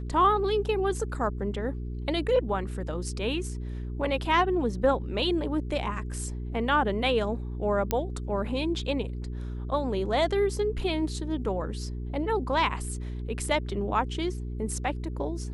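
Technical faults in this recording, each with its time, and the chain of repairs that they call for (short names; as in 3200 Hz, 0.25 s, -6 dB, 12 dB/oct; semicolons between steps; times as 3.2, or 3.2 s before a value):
hum 60 Hz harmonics 7 -34 dBFS
7.91 pop -11 dBFS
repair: de-click; de-hum 60 Hz, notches 7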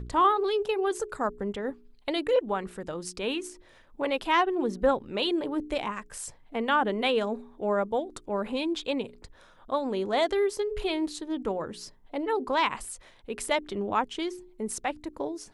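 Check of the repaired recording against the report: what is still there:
none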